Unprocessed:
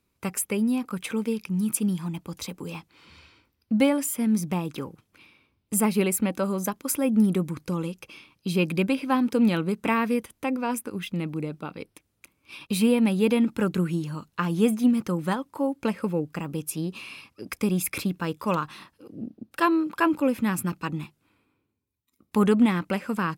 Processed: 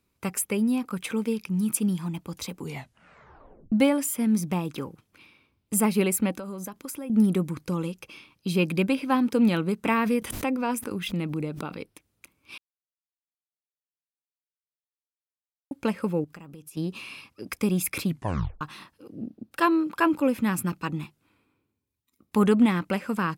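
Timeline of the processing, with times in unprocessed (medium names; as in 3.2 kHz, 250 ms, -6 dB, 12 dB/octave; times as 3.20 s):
2.59 s: tape stop 1.13 s
6.33–7.10 s: compression 10:1, threshold -32 dBFS
9.98–11.81 s: swell ahead of each attack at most 60 dB/s
12.58–15.71 s: mute
16.24–16.77 s: compression 8:1, threshold -41 dBFS
18.06 s: tape stop 0.55 s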